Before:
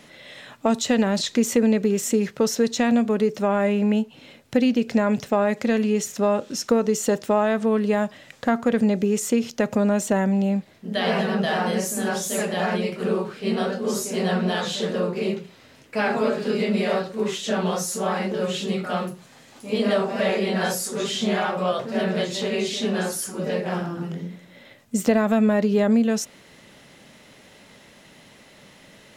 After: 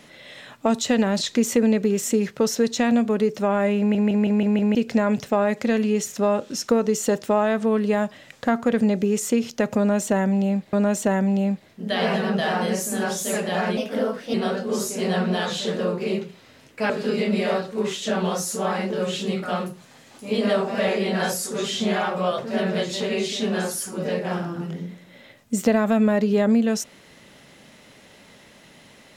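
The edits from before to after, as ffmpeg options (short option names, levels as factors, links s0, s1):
-filter_complex "[0:a]asplit=11[s0][s1][s2][s3][s4][s5][s6][s7][s8][s9][s10];[s0]atrim=end=3.952[s11];[s1]atrim=start=3.788:end=3.952[s12];[s2]atrim=start=3.788:end=3.952[s13];[s3]atrim=start=3.788:end=3.952[s14];[s4]atrim=start=3.788:end=3.952[s15];[s5]atrim=start=3.788:end=3.952[s16];[s6]atrim=start=4.748:end=10.732[s17];[s7]atrim=start=9.778:end=12.824[s18];[s8]atrim=start=12.82:end=13.49,asetpts=PTS-STARTPTS,asetrate=52038,aresample=44100[s19];[s9]atrim=start=13.486:end=16.052[s20];[s10]atrim=start=16.308[s21];[s11][s12]acrossfade=d=0.004:c1=hsin:c2=hsin[s22];[s22][s13]acrossfade=d=0.004:c1=hsin:c2=hsin[s23];[s23][s14]acrossfade=d=0.004:c1=hsin:c2=hsin[s24];[s24][s15]acrossfade=d=0.004:c1=hsin:c2=hsin[s25];[s25][s16]acrossfade=d=0.004:c1=hsin:c2=hsin[s26];[s26][s17]acrossfade=d=0.004:c1=hsin:c2=hsin[s27];[s27][s18]acrossfade=d=0.004:c1=hsin:c2=hsin[s28];[s28][s19]acrossfade=d=0.004:c1=hsin:c2=hsin[s29];[s29][s20]acrossfade=d=0.004:c1=hsin:c2=hsin[s30];[s30][s21]acrossfade=d=0.004:c1=hsin:c2=hsin"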